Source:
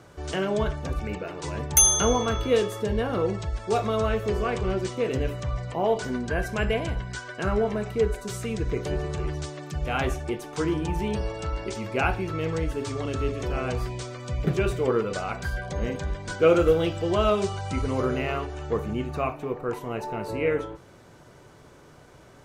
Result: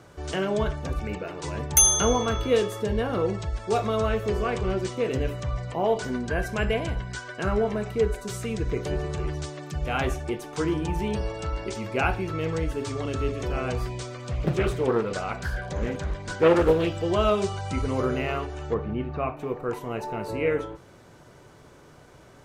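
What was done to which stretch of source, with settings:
0:14.17–0:16.87: highs frequency-modulated by the lows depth 0.59 ms
0:18.74–0:19.37: high-frequency loss of the air 290 metres

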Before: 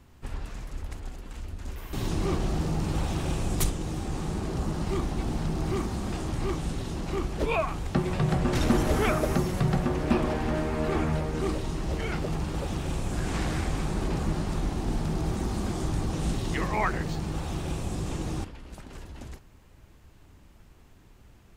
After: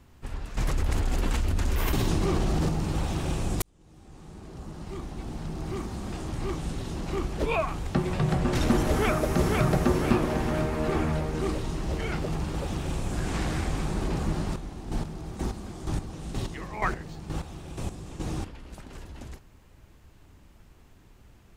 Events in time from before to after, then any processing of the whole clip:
0:00.57–0:02.69: envelope flattener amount 100%
0:03.62–0:07.15: fade in
0:08.87–0:09.65: delay throw 500 ms, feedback 50%, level −2.5 dB
0:14.44–0:18.20: square-wave tremolo 2.1 Hz, depth 65%, duty 25%

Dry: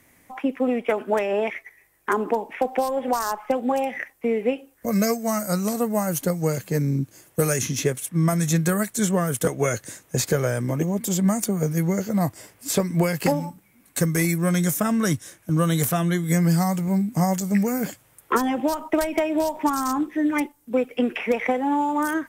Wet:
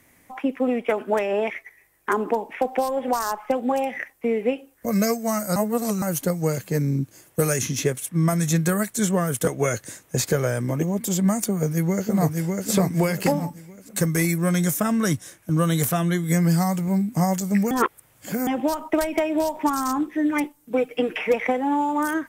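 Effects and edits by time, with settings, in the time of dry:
0:05.56–0:06.02: reverse
0:11.48–0:12.68: delay throw 600 ms, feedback 35%, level −3 dB
0:17.71–0:18.47: reverse
0:20.43–0:21.34: comb filter 6.5 ms

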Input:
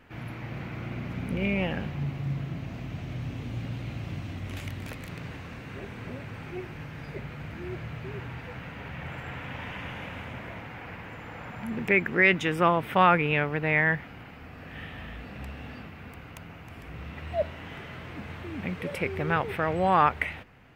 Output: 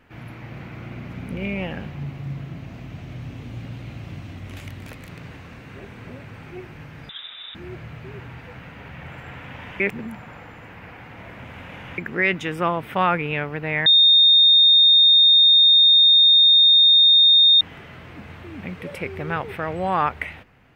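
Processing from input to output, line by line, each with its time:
0:07.09–0:07.55: voice inversion scrambler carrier 3,700 Hz
0:09.80–0:11.98: reverse
0:13.86–0:17.61: beep over 3,670 Hz −10 dBFS

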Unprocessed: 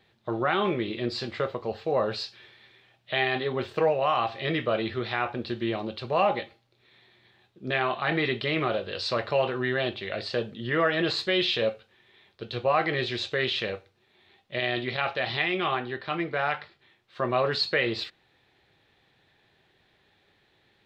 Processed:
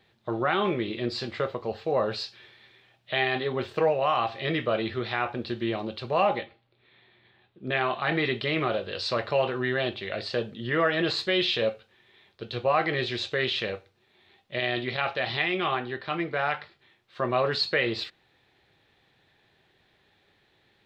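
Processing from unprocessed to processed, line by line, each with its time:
0:06.38–0:07.77: low-pass filter 3,800 Hz 24 dB per octave

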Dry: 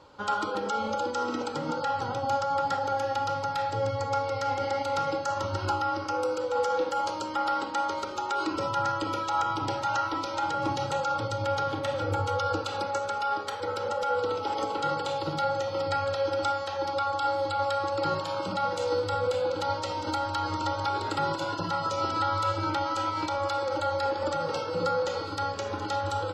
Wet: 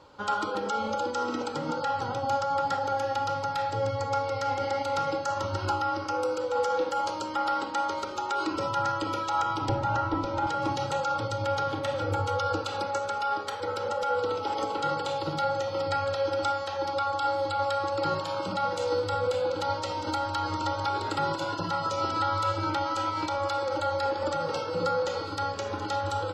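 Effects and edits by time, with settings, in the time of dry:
0:09.69–0:10.47: spectral tilt −3.5 dB per octave

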